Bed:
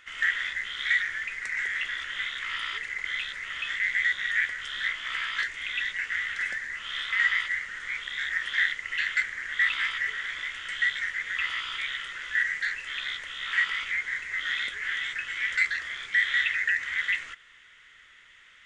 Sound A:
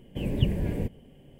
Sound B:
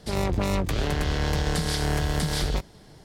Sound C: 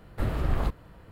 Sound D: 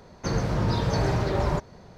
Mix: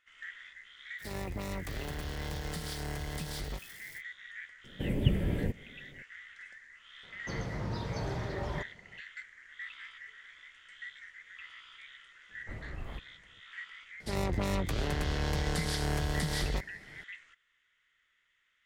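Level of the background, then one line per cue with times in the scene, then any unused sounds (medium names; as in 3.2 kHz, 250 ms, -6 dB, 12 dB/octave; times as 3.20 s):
bed -19.5 dB
0.98 s: add B -13 dB, fades 0.05 s + zero-crossing glitches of -30 dBFS
4.64 s: add A -2.5 dB
7.03 s: add D -11.5 dB
12.29 s: add C -15.5 dB + level-controlled noise filter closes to 1.8 kHz, open at -20 dBFS
14.00 s: add B -6.5 dB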